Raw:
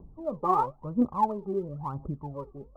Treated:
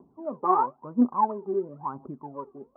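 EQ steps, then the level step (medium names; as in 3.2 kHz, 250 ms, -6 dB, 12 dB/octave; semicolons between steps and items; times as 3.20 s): cabinet simulation 190–2800 Hz, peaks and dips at 250 Hz +10 dB, 380 Hz +8 dB, 710 Hz +6 dB, 1 kHz +9 dB, 1.5 kHz +7 dB; peaking EQ 1.6 kHz +3 dB 0.58 oct; -5.0 dB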